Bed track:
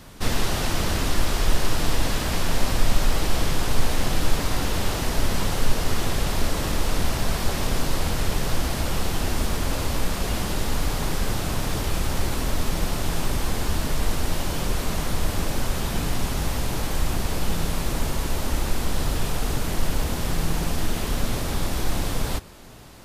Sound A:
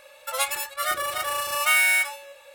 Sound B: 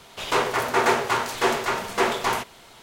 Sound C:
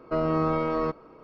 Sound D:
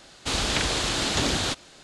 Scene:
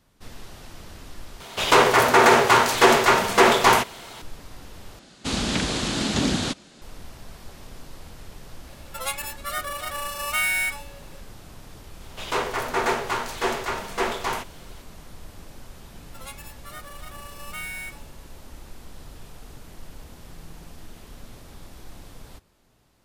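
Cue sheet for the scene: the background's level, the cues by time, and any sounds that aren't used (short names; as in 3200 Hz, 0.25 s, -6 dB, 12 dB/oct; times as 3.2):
bed track -18.5 dB
1.4 replace with B -3 dB + maximiser +11 dB
4.99 replace with D -2 dB + bell 210 Hz +11.5 dB 1.1 oct
8.67 add A -4 dB
12 add B -3.5 dB
15.87 add A -15.5 dB
not used: C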